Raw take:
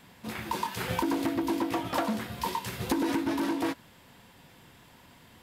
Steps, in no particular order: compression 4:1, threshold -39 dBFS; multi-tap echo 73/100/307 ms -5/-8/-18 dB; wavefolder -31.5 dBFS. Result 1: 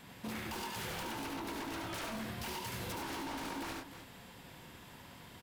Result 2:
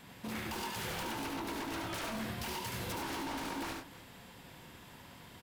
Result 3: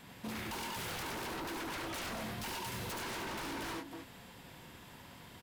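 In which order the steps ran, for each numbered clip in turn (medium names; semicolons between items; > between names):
wavefolder > multi-tap echo > compression; wavefolder > compression > multi-tap echo; multi-tap echo > wavefolder > compression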